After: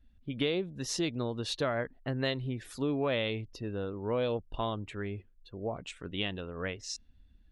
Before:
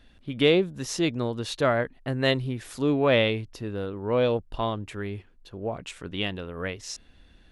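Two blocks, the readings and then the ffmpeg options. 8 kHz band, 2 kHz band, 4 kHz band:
−3.0 dB, −8.0 dB, −6.0 dB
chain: -af "afftdn=noise_reduction=16:noise_floor=-49,adynamicequalizer=threshold=0.00708:dfrequency=4400:dqfactor=1.5:tfrequency=4400:tqfactor=1.5:attack=5:release=100:ratio=0.375:range=2:mode=boostabove:tftype=bell,acompressor=threshold=-23dB:ratio=6,volume=-4dB"

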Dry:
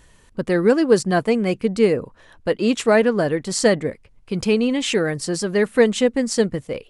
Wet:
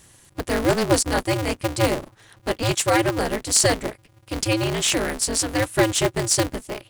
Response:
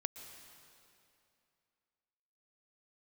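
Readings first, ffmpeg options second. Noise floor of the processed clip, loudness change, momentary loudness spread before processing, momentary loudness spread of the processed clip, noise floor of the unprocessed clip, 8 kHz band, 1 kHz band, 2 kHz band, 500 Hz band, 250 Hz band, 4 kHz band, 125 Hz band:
−55 dBFS, −2.0 dB, 9 LU, 10 LU, −53 dBFS, +8.0 dB, +3.0 dB, −0.5 dB, −5.5 dB, −5.5 dB, +3.5 dB, +2.0 dB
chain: -af "crystalizer=i=3.5:c=0,aeval=exprs='val(0)*sgn(sin(2*PI*110*n/s))':channel_layout=same,volume=-4.5dB"

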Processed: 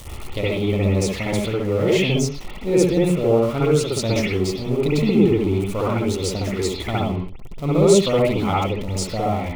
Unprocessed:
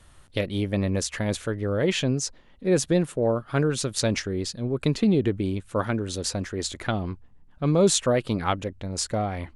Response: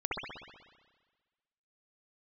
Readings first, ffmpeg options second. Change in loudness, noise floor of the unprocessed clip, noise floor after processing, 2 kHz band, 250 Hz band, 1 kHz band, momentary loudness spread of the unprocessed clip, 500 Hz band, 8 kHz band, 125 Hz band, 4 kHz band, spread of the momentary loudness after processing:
+5.5 dB, −54 dBFS, −32 dBFS, +4.5 dB, +5.5 dB, +5.5 dB, 8 LU, +7.0 dB, 0.0 dB, +5.5 dB, +3.0 dB, 9 LU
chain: -filter_complex "[0:a]aeval=exprs='val(0)+0.5*0.0266*sgn(val(0))':channel_layout=same,equalizer=frequency=1600:width=5.2:gain=-15[link_01];[1:a]atrim=start_sample=2205,afade=type=out:start_time=0.23:duration=0.01,atrim=end_sample=10584[link_02];[link_01][link_02]afir=irnorm=-1:irlink=0,volume=-1dB"

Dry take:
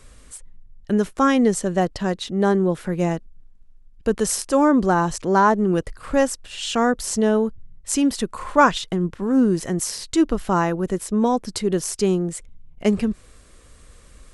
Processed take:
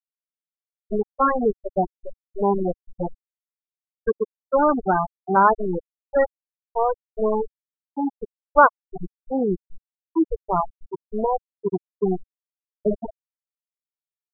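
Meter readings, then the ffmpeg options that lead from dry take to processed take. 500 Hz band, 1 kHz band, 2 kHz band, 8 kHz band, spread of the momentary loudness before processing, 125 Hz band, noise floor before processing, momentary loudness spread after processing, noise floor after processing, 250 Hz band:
−1.5 dB, +1.0 dB, −2.5 dB, below −40 dB, 9 LU, −8.0 dB, −49 dBFS, 15 LU, below −85 dBFS, −8.0 dB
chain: -af "aeval=exprs='val(0)*gte(abs(val(0)),0.126)':channel_layout=same,equalizer=frequency=100:width_type=o:width=0.67:gain=-4,equalizer=frequency=250:width_type=o:width=0.67:gain=-10,equalizer=frequency=4000:width_type=o:width=0.67:gain=-10,afftfilt=real='re*gte(hypot(re,im),0.355)':imag='im*gte(hypot(re,im),0.355)':win_size=1024:overlap=0.75,volume=2.5dB"

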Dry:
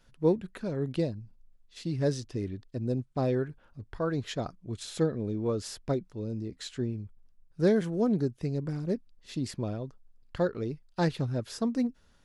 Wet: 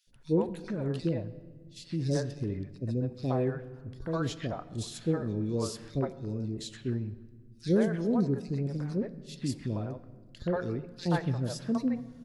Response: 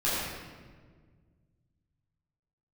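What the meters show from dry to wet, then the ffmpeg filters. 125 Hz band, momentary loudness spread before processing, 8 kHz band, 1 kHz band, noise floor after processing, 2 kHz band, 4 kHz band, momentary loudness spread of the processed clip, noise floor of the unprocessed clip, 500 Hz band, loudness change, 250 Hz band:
+0.5 dB, 11 LU, 0.0 dB, −0.5 dB, −53 dBFS, −1.0 dB, −1.0 dB, 12 LU, −62 dBFS, −2.5 dB, −0.5 dB, 0.0 dB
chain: -filter_complex "[0:a]acrossover=split=520|2600[link_01][link_02][link_03];[link_01]adelay=70[link_04];[link_02]adelay=130[link_05];[link_04][link_05][link_03]amix=inputs=3:normalize=0,asplit=2[link_06][link_07];[1:a]atrim=start_sample=2205[link_08];[link_07][link_08]afir=irnorm=-1:irlink=0,volume=-25.5dB[link_09];[link_06][link_09]amix=inputs=2:normalize=0"

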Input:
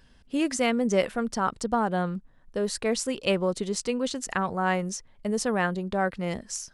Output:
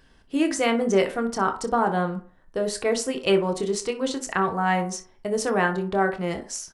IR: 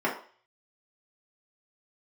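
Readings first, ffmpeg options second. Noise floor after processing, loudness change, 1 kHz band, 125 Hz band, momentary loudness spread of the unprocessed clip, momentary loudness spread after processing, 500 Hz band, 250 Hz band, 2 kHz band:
−56 dBFS, +3.0 dB, +4.0 dB, +1.5 dB, 8 LU, 8 LU, +4.0 dB, +2.0 dB, +3.5 dB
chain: -filter_complex "[0:a]aecho=1:1:26|60:0.299|0.133,asplit=2[link_01][link_02];[1:a]atrim=start_sample=2205[link_03];[link_02][link_03]afir=irnorm=-1:irlink=0,volume=-15dB[link_04];[link_01][link_04]amix=inputs=2:normalize=0"

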